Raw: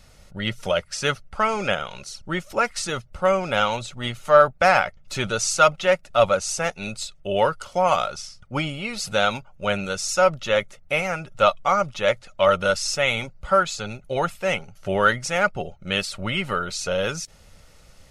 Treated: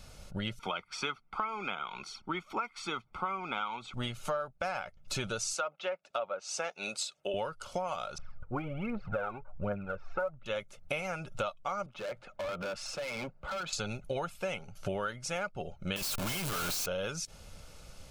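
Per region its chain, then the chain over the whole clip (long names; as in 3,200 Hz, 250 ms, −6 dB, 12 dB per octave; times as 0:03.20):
0:00.59–0:03.94: three-way crossover with the lows and the highs turned down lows −22 dB, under 240 Hz, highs −19 dB, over 3,600 Hz + comb filter 0.9 ms, depth 83%
0:05.54–0:07.34: high-pass filter 370 Hz + treble cut that deepens with the level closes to 1,900 Hz, closed at −15 dBFS
0:08.18–0:10.46: low-pass filter 1,700 Hz 24 dB per octave + phase shifter 1.3 Hz, delay 2.9 ms, feedback 63%
0:11.86–0:13.73: three-way crossover with the lows and the highs turned down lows −12 dB, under 170 Hz, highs −18 dB, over 2,700 Hz + downward compressor, threshold −27 dBFS + hard clipping −33.5 dBFS
0:15.96–0:16.86: sign of each sample alone + high-shelf EQ 9,200 Hz +6.5 dB
whole clip: notch filter 1,900 Hz, Q 6.8; downward compressor 10 to 1, threshold −32 dBFS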